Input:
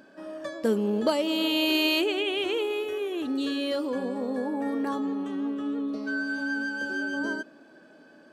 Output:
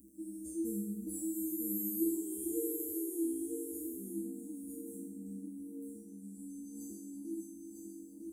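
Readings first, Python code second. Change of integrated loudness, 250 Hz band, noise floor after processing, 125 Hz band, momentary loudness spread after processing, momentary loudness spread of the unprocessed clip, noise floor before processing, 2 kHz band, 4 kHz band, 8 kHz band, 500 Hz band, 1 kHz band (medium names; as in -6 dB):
-11.5 dB, -9.5 dB, -52 dBFS, no reading, 13 LU, 7 LU, -54 dBFS, under -40 dB, under -40 dB, +5.5 dB, -15.0 dB, under -40 dB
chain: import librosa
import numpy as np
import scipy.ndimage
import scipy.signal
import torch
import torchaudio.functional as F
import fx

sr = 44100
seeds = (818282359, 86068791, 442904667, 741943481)

p1 = scipy.signal.sosfilt(scipy.signal.ellip(3, 1.0, 60, [270.0, 8700.0], 'bandstop', fs=sr, output='sos'), x)
p2 = fx.bass_treble(p1, sr, bass_db=2, treble_db=9)
p3 = fx.over_compress(p2, sr, threshold_db=-42.0, ratio=-1.0)
p4 = p2 + (p3 * 10.0 ** (1.0 / 20.0))
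p5 = fx.fixed_phaser(p4, sr, hz=840.0, stages=8)
p6 = fx.comb_fb(p5, sr, f0_hz=66.0, decay_s=0.97, harmonics='odd', damping=0.0, mix_pct=100)
p7 = p6 + fx.echo_single(p6, sr, ms=953, db=-5.5, dry=0)
y = p7 * 10.0 ** (13.5 / 20.0)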